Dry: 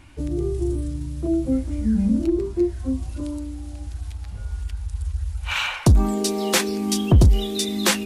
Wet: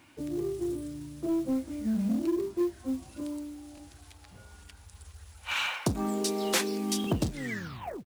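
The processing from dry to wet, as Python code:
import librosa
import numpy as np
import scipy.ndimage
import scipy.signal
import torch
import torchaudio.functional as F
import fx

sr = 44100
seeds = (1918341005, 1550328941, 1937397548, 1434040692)

p1 = fx.tape_stop_end(x, sr, length_s=0.95)
p2 = scipy.signal.sosfilt(scipy.signal.butter(2, 190.0, 'highpass', fs=sr, output='sos'), p1)
p3 = fx.quant_companded(p2, sr, bits=6)
p4 = 10.0 ** (-21.5 / 20.0) * (np.abs((p3 / 10.0 ** (-21.5 / 20.0) + 3.0) % 4.0 - 2.0) - 1.0)
p5 = p3 + (p4 * 10.0 ** (-10.5 / 20.0))
p6 = fx.buffer_glitch(p5, sr, at_s=(3.75, 7.02), block=1024, repeats=1)
y = p6 * 10.0 ** (-7.5 / 20.0)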